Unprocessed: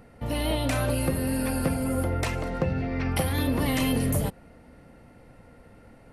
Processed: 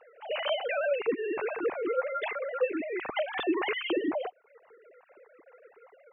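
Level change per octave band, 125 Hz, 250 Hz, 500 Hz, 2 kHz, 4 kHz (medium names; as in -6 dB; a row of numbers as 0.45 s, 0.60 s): under -35 dB, -8.0 dB, +2.0 dB, +0.5 dB, -2.5 dB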